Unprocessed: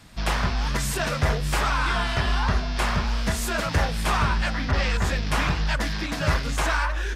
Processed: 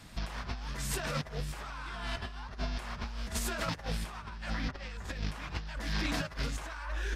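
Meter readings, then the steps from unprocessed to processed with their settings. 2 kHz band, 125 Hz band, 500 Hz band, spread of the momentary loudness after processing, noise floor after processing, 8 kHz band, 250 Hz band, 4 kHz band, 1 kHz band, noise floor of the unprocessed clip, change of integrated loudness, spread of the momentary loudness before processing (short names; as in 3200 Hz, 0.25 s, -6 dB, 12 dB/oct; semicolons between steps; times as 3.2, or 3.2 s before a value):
-13.5 dB, -13.0 dB, -12.5 dB, 7 LU, -46 dBFS, -9.5 dB, -10.5 dB, -11.0 dB, -15.0 dB, -29 dBFS, -13.0 dB, 3 LU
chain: negative-ratio compressor -28 dBFS, ratio -0.5; gain -7.5 dB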